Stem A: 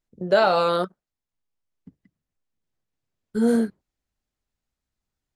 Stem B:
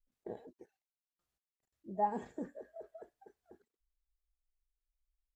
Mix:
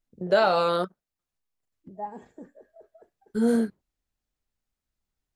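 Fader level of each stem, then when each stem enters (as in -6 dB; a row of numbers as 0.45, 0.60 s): -2.5, -3.0 dB; 0.00, 0.00 s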